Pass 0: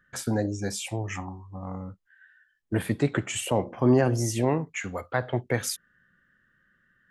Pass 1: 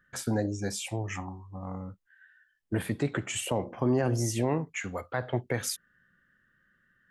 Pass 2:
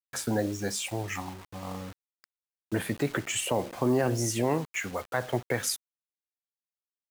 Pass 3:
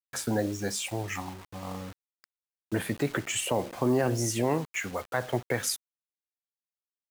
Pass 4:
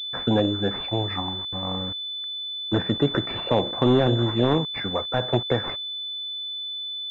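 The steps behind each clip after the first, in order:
limiter -15.5 dBFS, peak gain reduction 5 dB; gain -2 dB
low shelf 200 Hz -7 dB; bit-crush 8-bit; gain +3 dB
nothing audible
one-sided fold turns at -22 dBFS; air absorption 110 m; pulse-width modulation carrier 3500 Hz; gain +7.5 dB

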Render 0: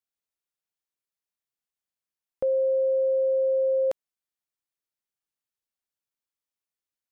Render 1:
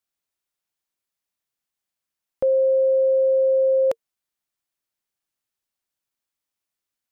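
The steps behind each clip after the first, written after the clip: notch 460 Hz, Q 12; gain +5.5 dB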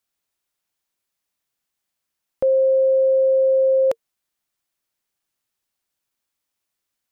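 limiter -18 dBFS, peak gain reduction 3.5 dB; gain +5 dB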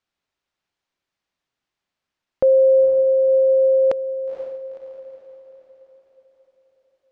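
air absorption 140 m; diffused feedback echo 0.493 s, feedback 48%, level -9.5 dB; gain +3.5 dB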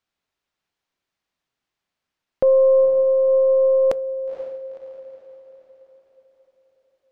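tracing distortion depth 0.083 ms; on a send at -19 dB: reverb RT60 0.35 s, pre-delay 3 ms

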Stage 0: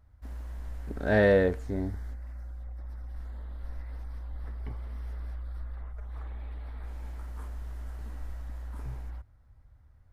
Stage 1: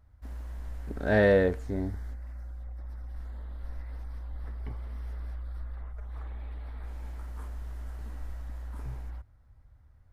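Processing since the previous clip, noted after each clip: nothing audible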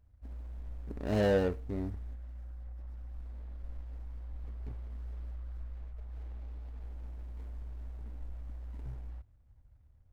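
median filter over 41 samples; gain -4 dB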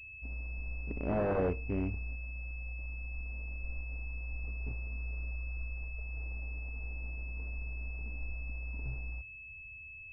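wavefolder -27 dBFS; pulse-width modulation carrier 2600 Hz; gain +2.5 dB

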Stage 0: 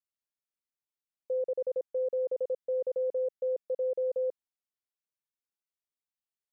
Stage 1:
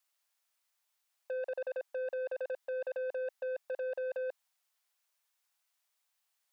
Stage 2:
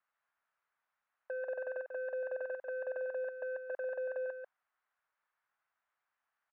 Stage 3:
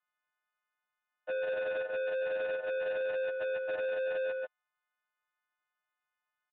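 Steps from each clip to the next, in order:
HPF 640 Hz 24 dB/oct; in parallel at +1 dB: negative-ratio compressor -42 dBFS, ratio -0.5; on the sum: soft clip -37.5 dBFS, distortion -14 dB; gain +4 dB
level quantiser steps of 21 dB; synth low-pass 1500 Hz, resonance Q 2.1; echo 0.142 s -7 dB; gain +2.5 dB
frequency quantiser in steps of 3 st; sample leveller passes 3; downsampling 8000 Hz

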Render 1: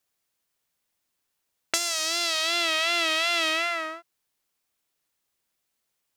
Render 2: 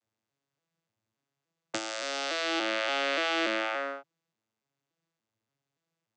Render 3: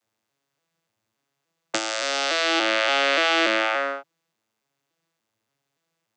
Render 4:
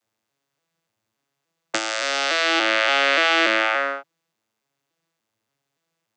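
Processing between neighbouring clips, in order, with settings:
arpeggiated vocoder major triad, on A2, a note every 0.288 s; gain -4 dB
low shelf 260 Hz -8 dB; gain +9 dB
dynamic EQ 1800 Hz, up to +4 dB, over -36 dBFS, Q 0.98

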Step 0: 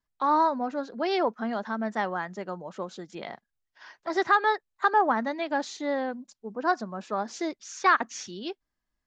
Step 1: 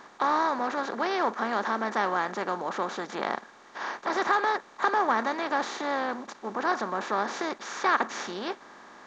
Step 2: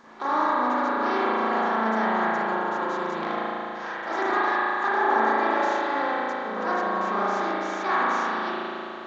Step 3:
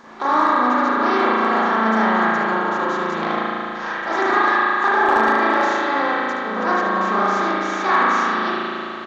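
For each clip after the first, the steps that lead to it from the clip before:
per-bin compression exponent 0.4; gain -6.5 dB
reverse echo 0.947 s -22.5 dB; spring tank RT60 3.2 s, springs 36 ms, chirp 60 ms, DRR -9 dB; gain -6 dB
hard clip -13.5 dBFS, distortion -34 dB; echo 73 ms -9 dB; gain +7 dB

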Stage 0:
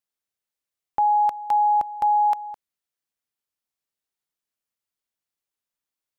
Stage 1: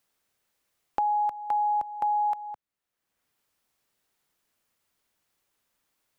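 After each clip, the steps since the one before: three-band squash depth 70%; gain -6.5 dB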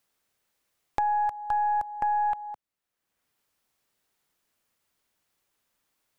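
tracing distortion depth 0.14 ms

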